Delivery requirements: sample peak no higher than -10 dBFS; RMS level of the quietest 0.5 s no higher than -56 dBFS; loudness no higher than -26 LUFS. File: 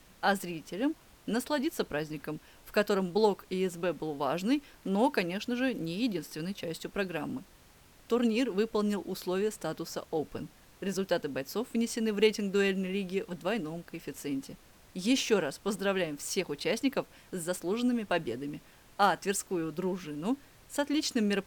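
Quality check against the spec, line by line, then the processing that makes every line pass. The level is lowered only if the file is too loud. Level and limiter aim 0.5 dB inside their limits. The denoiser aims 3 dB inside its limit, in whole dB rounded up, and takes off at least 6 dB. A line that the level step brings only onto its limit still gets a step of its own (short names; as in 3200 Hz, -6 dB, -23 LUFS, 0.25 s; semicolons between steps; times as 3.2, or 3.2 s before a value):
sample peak -12.0 dBFS: OK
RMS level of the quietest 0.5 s -58 dBFS: OK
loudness -32.0 LUFS: OK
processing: none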